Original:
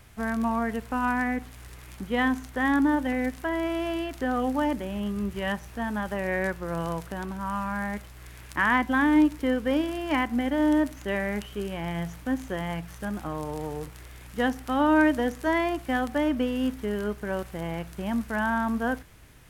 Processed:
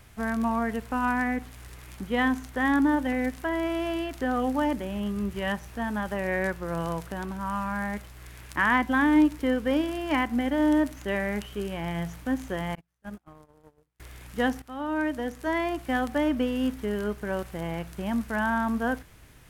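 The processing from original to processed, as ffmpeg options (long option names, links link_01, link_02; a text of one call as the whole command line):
ffmpeg -i in.wav -filter_complex "[0:a]asettb=1/sr,asplit=3[link_01][link_02][link_03];[link_01]atrim=end=12.754[link_04];[link_02]atrim=start=12.75:end=14,asetpts=PTS-STARTPTS,afade=type=in:duration=0.004:curve=qsin,afade=type=out:start_time=1.246:duration=0.004:curve=qsin,agate=range=-38dB:threshold=-30dB:ratio=16:release=100:detection=peak[link_05];[link_03]atrim=start=13.996[link_06];[link_04][link_05]acrossfade=duration=0.004:curve1=hsin:curve2=qsin[link_07];[link_07][link_06]acrossfade=duration=0.004:curve1=qsin:curve2=hsin,asplit=2[link_08][link_09];[link_08]atrim=end=14.62,asetpts=PTS-STARTPTS,afade=type=out:start_time=14.616:duration=0.004:curve=hsin:silence=0.188365[link_10];[link_09]atrim=start=14.62,asetpts=PTS-STARTPTS,afade=type=in:duration=1.37:silence=0.188365[link_11];[link_10][link_11]concat=n=2:v=0:a=1" out.wav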